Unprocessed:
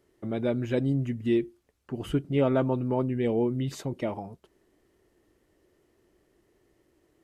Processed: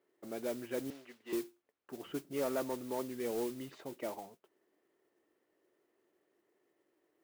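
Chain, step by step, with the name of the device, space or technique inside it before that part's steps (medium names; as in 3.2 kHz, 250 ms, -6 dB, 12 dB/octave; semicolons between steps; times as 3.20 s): carbon microphone (band-pass 340–2700 Hz; saturation -19.5 dBFS, distortion -19 dB; modulation noise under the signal 14 dB); 0.90–1.33 s: three-band isolator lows -23 dB, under 390 Hz, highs -13 dB, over 5.1 kHz; trim -7 dB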